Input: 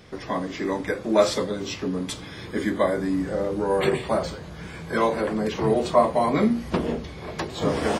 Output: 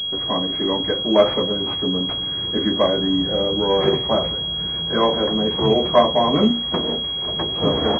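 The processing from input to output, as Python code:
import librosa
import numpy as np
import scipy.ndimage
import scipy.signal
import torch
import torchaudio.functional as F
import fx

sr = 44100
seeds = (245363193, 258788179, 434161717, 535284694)

y = fx.tilt_eq(x, sr, slope=2.0, at=(6.51, 7.27))
y = fx.pwm(y, sr, carrier_hz=3300.0)
y = F.gain(torch.from_numpy(y), 4.0).numpy()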